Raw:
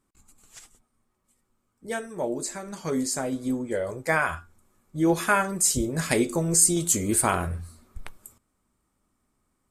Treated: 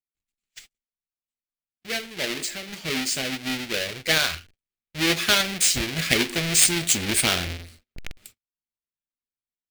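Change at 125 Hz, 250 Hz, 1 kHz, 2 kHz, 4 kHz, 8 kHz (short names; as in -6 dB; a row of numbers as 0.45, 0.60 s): -1.5, -3.0, -4.5, +5.0, +15.0, +1.0 dB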